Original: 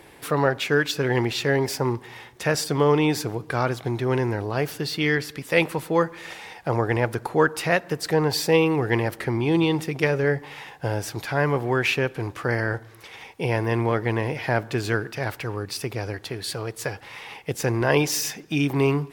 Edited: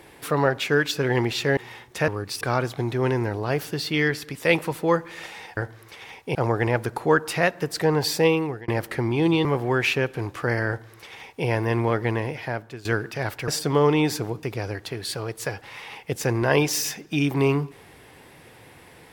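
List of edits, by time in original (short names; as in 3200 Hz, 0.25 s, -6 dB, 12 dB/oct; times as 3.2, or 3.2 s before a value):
1.57–2.02 cut
2.53–3.48 swap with 15.49–15.82
8.41–8.97 fade out equal-power
9.74–11.46 cut
12.69–13.47 copy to 6.64
14.08–14.86 fade out, to -17.5 dB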